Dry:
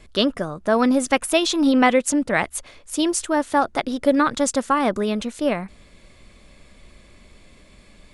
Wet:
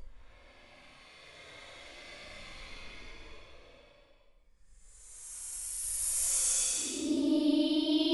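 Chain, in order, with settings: tremolo triangle 5.9 Hz, depth 80%; Paulstretch 20×, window 0.05 s, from 2.62 s

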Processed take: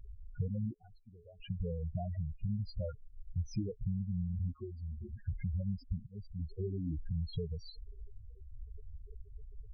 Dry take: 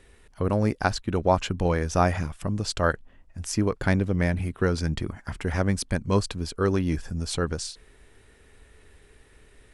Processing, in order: self-modulated delay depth 0.11 ms; low-pass 4.4 kHz; bass shelf 200 Hz +3 dB; 6.07–7.42 s: fade in; compression 8:1, threshold -36 dBFS, peak gain reduction 21 dB; 4.56–5.13 s: feedback comb 73 Hz, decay 0.17 s, harmonics odd, mix 90%; loudest bins only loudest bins 4; 0.74–1.40 s: feedback comb 430 Hz, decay 0.61 s, mix 90%; trim +5.5 dB

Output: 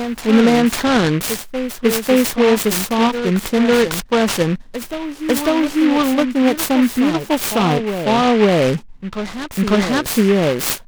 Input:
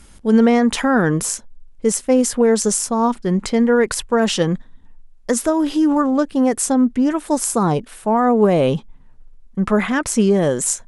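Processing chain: on a send: reverse echo 548 ms -9 dB; on the sum: delay time shaken by noise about 1.9 kHz, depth 0.078 ms; trim +1 dB

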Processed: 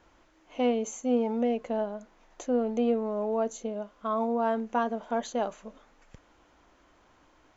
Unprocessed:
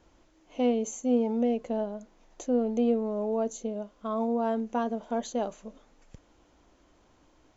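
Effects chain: peaking EQ 1.5 kHz +8.5 dB 2.3 oct; trim -2.5 dB

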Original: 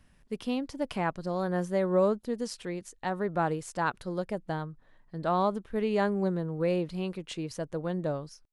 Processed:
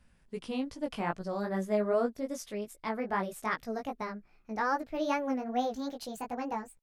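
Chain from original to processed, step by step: gliding tape speed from 94% -> 156%; chorus 2.5 Hz, delay 16 ms, depth 3.4 ms

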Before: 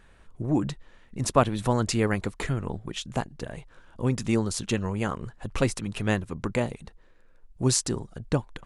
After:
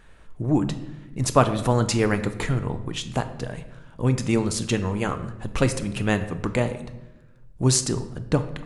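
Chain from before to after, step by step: simulated room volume 400 m³, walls mixed, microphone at 0.44 m; trim +3 dB

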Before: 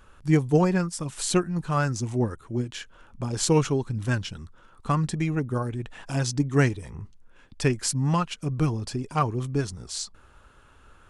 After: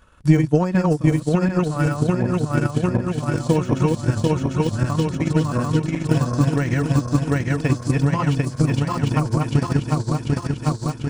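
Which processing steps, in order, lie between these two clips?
backward echo that repeats 372 ms, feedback 80%, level 0 dB; peak limiter -12.5 dBFS, peak gain reduction 6.5 dB; comb of notches 400 Hz; de-esser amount 90%; transient shaper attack +10 dB, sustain -6 dB; trim +1.5 dB

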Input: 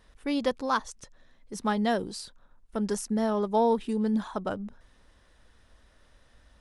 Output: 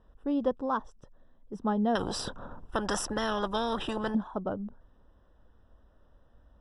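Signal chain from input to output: boxcar filter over 20 samples; 1.95–4.15 s: spectrum-flattening compressor 4:1

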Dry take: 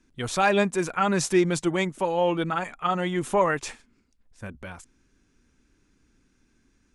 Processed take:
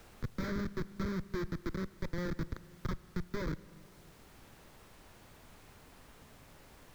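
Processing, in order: knee-point frequency compression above 1.3 kHz 1.5:1; tilt EQ -1.5 dB/octave; Schmitt trigger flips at -19 dBFS; treble shelf 4.3 kHz -11 dB; static phaser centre 2.8 kHz, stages 6; added noise pink -60 dBFS; on a send at -18 dB: reverberation RT60 2.1 s, pre-delay 35 ms; on the sum: three bands compressed up and down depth 40%; trim -6 dB

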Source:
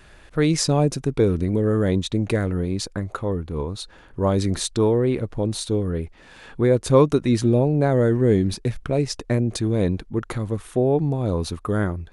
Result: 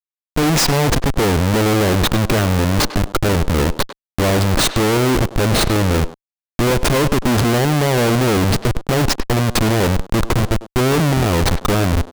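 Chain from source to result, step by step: Schmitt trigger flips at -27.5 dBFS; speakerphone echo 100 ms, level -9 dB; trim +7 dB

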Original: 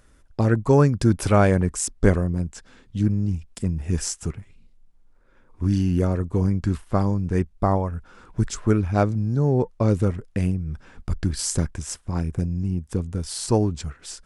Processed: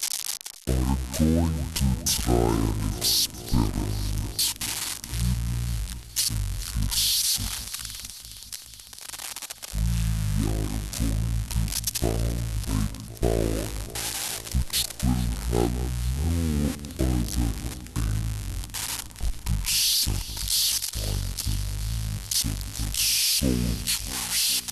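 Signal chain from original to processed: zero-crossing glitches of -14 dBFS; echo whose repeats swap between lows and highs 123 ms, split 2.2 kHz, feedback 84%, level -13.5 dB; compression 3:1, threshold -19 dBFS, peak gain reduction 7 dB; speed mistake 78 rpm record played at 45 rpm; three bands expanded up and down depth 40%; trim -2.5 dB

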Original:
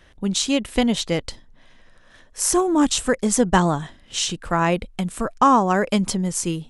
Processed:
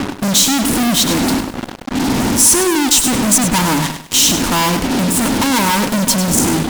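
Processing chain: wind noise 310 Hz -34 dBFS; dynamic bell 590 Hz, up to -3 dB, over -27 dBFS, Q 1.1; in parallel at +3 dB: compression, threshold -27 dBFS, peak gain reduction 14 dB; on the sum: small resonant body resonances 260/930 Hz, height 18 dB, ringing for 40 ms; fuzz box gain 32 dB, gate -26 dBFS; treble shelf 3.6 kHz +10 dB; bit-crushed delay 100 ms, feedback 35%, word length 6-bit, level -9 dB; trim -1.5 dB

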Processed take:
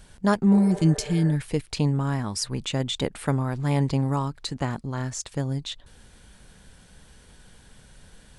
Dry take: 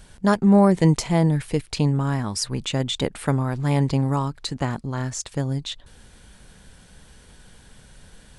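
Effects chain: spectral replace 0.55–1.31 s, 370–2100 Hz both; trim -2.5 dB

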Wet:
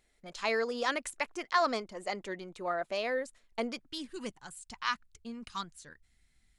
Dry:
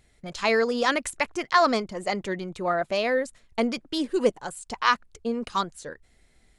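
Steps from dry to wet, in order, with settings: peaking EQ 98 Hz -15 dB 1.5 oct, from 3.79 s 510 Hz; trim -7.5 dB

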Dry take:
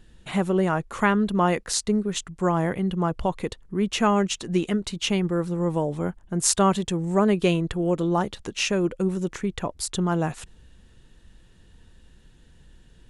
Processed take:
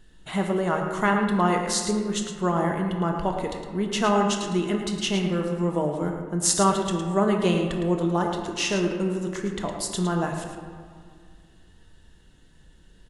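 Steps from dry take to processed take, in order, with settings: bass shelf 320 Hz -4 dB; band-stop 2.4 kHz, Q 8.7; delay 110 ms -9.5 dB; on a send at -3 dB: reverberation RT60 2.0 s, pre-delay 3 ms; on the sum: trim -1 dB

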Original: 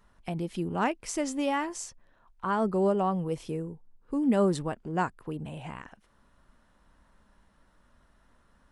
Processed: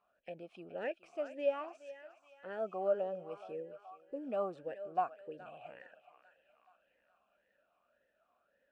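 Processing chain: de-esser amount 100%; thinning echo 423 ms, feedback 63%, high-pass 740 Hz, level -12 dB; talking filter a-e 1.8 Hz; trim +1.5 dB

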